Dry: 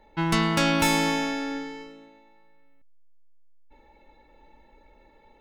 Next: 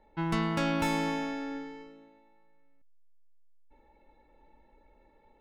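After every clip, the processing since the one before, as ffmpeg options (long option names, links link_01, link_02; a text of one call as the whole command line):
ffmpeg -i in.wav -af "highshelf=frequency=2700:gain=-10,volume=-5.5dB" out.wav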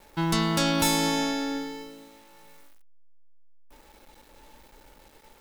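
ffmpeg -i in.wav -filter_complex "[0:a]asplit=2[link_01][link_02];[link_02]alimiter=level_in=2dB:limit=-24dB:level=0:latency=1,volume=-2dB,volume=1.5dB[link_03];[link_01][link_03]amix=inputs=2:normalize=0,aexciter=amount=3.7:drive=5.5:freq=3400,acrusher=bits=8:mix=0:aa=0.000001" out.wav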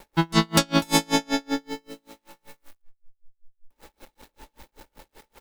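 ffmpeg -i in.wav -filter_complex "[0:a]asplit=2[link_01][link_02];[link_02]adelay=163,lowpass=frequency=4300:poles=1,volume=-23dB,asplit=2[link_03][link_04];[link_04]adelay=163,lowpass=frequency=4300:poles=1,volume=0.48,asplit=2[link_05][link_06];[link_06]adelay=163,lowpass=frequency=4300:poles=1,volume=0.48[link_07];[link_01][link_03][link_05][link_07]amix=inputs=4:normalize=0,aeval=exprs='val(0)*pow(10,-36*(0.5-0.5*cos(2*PI*5.2*n/s))/20)':channel_layout=same,volume=9dB" out.wav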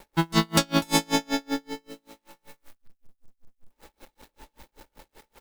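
ffmpeg -i in.wav -af "acrusher=bits=5:mode=log:mix=0:aa=0.000001,volume=-2dB" out.wav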